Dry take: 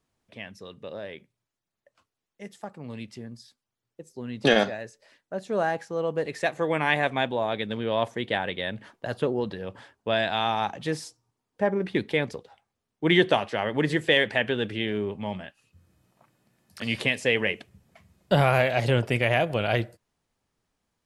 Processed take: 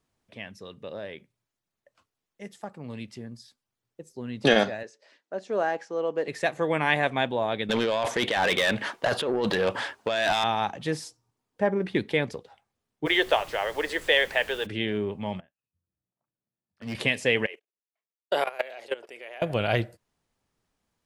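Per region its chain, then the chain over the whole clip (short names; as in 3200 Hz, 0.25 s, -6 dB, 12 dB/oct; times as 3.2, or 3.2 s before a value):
4.83–6.28 Chebyshev band-pass 310–5800 Hz + dynamic EQ 3900 Hz, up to -5 dB, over -59 dBFS, Q 4.2
7.69–10.44 negative-ratio compressor -32 dBFS + overdrive pedal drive 21 dB, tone 6700 Hz, clips at -14 dBFS
13.05–14.65 HPF 430 Hz 24 dB/oct + added noise pink -47 dBFS
15.4–16.95 LPF 1300 Hz 6 dB/oct + hard clip -27 dBFS + upward expander 2.5:1, over -47 dBFS
17.46–19.42 level quantiser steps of 20 dB + Chebyshev high-pass 390 Hz, order 3 + gate -54 dBFS, range -27 dB
whole clip: dry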